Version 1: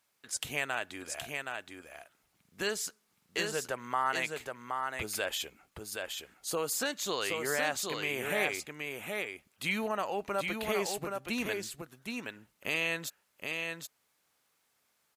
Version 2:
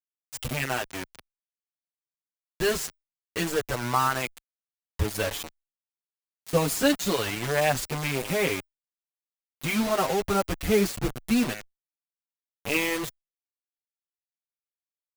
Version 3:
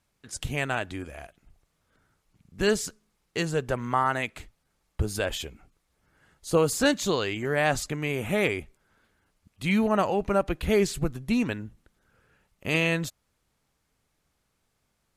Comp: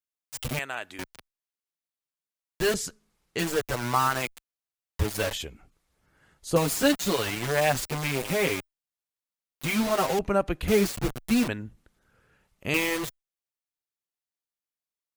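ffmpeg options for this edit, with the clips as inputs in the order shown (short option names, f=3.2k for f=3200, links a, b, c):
-filter_complex "[2:a]asplit=4[a][b][c][d];[1:a]asplit=6[e][f][g][h][i][j];[e]atrim=end=0.592[k];[0:a]atrim=start=0.588:end=0.992[l];[f]atrim=start=0.988:end=2.742[m];[a]atrim=start=2.738:end=3.392[n];[g]atrim=start=3.388:end=5.332[o];[b]atrim=start=5.328:end=6.562[p];[h]atrim=start=6.558:end=10.192[q];[c]atrim=start=10.188:end=10.682[r];[i]atrim=start=10.678:end=11.482[s];[d]atrim=start=11.478:end=12.742[t];[j]atrim=start=12.738[u];[k][l]acrossfade=d=0.004:c1=hsin:c2=hsin[v];[v][m]acrossfade=d=0.004:c1=hsin:c2=hsin[w];[w][n]acrossfade=d=0.004:c1=hsin:c2=hsin[x];[x][o]acrossfade=d=0.004:c1=hsin:c2=hsin[y];[y][p]acrossfade=d=0.004:c1=hsin:c2=hsin[z];[z][q]acrossfade=d=0.004:c1=hsin:c2=hsin[aa];[aa][r]acrossfade=d=0.004:c1=hsin:c2=hsin[ab];[ab][s]acrossfade=d=0.004:c1=hsin:c2=hsin[ac];[ac][t]acrossfade=d=0.004:c1=hsin:c2=hsin[ad];[ad][u]acrossfade=d=0.004:c1=hsin:c2=hsin"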